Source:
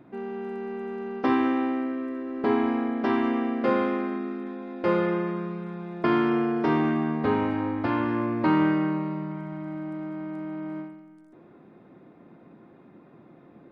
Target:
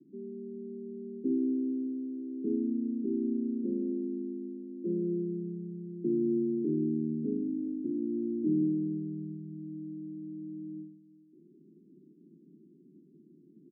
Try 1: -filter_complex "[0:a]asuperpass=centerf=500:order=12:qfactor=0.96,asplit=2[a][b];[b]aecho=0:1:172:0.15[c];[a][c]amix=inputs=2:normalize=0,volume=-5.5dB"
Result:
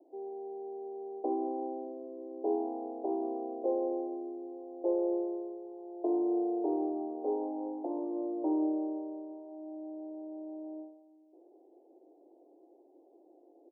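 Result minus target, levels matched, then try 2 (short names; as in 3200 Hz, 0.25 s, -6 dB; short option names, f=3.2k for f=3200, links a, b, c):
500 Hz band +5.5 dB
-filter_complex "[0:a]asuperpass=centerf=240:order=12:qfactor=0.96,asplit=2[a][b];[b]aecho=0:1:172:0.15[c];[a][c]amix=inputs=2:normalize=0,volume=-5.5dB"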